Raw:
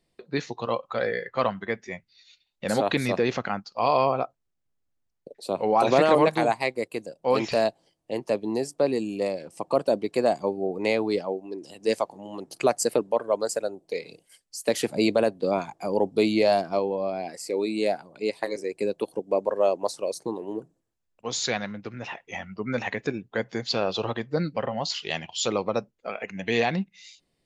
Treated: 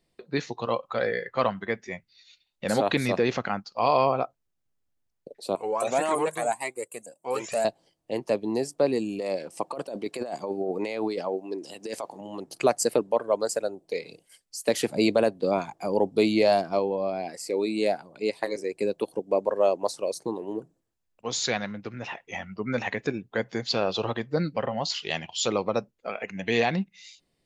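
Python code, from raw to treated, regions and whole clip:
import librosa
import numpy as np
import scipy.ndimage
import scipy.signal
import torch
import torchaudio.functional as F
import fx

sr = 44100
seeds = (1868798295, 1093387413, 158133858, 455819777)

y = fx.chain(x, sr, fx.highpass(hz=320.0, slope=6),
    fx.high_shelf_res(hz=6100.0, db=10.0, q=3.0),
    fx.comb_cascade(direction='rising', hz=1.8), at=(5.55, 7.65))
y = fx.chain(y, sr, fx.highpass(hz=260.0, slope=6),
    fx.over_compress(threshold_db=-30.0, ratio=-1.0), at=(9.19, 12.21))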